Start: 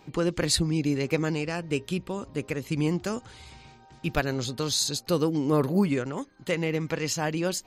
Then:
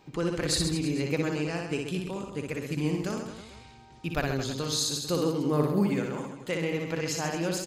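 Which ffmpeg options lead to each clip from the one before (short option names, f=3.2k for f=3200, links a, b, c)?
-af "aecho=1:1:60|132|218.4|322.1|446.5:0.631|0.398|0.251|0.158|0.1,volume=-4dB"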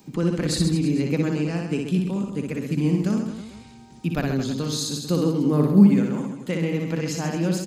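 -filter_complex "[0:a]equalizer=f=210:w=1.4:g=14,acrossover=split=120|1500|6100[a][b][c][d];[d]acompressor=mode=upward:threshold=-52dB:ratio=2.5[e];[a][b][c][e]amix=inputs=4:normalize=0"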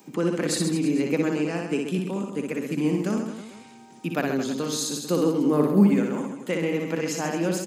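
-af "highpass=280,equalizer=f=4.3k:w=1.9:g=-6,volume=2.5dB"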